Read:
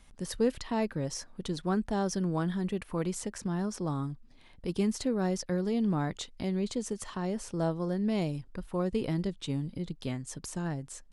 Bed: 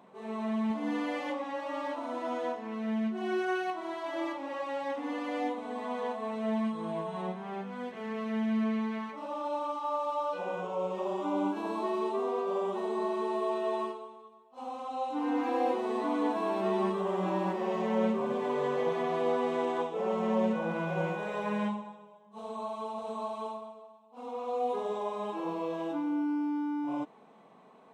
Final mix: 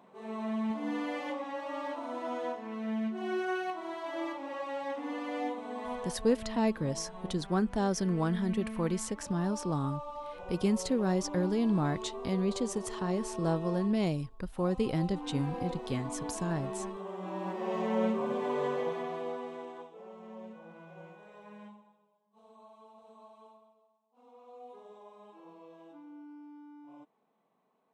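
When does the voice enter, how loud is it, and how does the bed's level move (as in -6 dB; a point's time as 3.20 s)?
5.85 s, +0.5 dB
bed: 5.93 s -2 dB
6.17 s -9.5 dB
17.19 s -9.5 dB
17.77 s -1 dB
18.66 s -1 dB
20.12 s -18.5 dB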